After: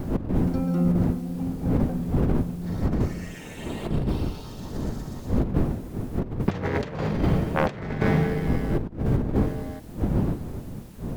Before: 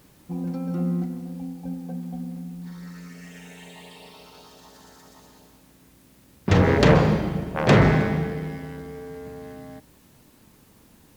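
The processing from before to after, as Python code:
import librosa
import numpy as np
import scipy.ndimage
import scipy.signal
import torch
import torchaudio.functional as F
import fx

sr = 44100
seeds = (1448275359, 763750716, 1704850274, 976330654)

y = fx.dmg_wind(x, sr, seeds[0], corner_hz=210.0, level_db=-24.0)
y = fx.over_compress(y, sr, threshold_db=-22.0, ratio=-0.5)
y = fx.low_shelf(y, sr, hz=200.0, db=-11.5, at=(3.34, 3.91))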